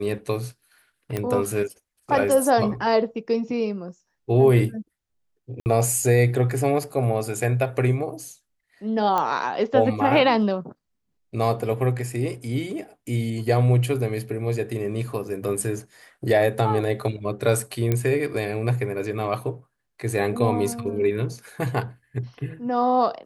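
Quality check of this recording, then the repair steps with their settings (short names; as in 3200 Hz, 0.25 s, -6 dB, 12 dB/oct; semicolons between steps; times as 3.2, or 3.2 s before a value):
1.17 pop -13 dBFS
5.6–5.66 gap 59 ms
9.18 pop -11 dBFS
17.92 pop -10 dBFS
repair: de-click; interpolate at 5.6, 59 ms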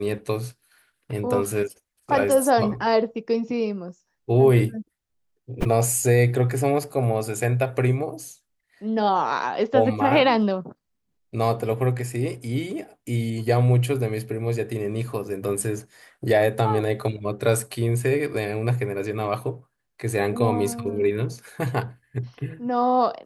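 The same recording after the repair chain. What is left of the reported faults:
none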